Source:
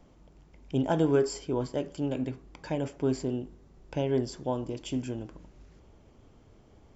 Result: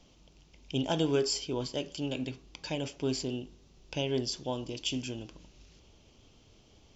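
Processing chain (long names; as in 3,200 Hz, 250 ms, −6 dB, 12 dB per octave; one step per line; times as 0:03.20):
flat-topped bell 4,100 Hz +14 dB
level −4 dB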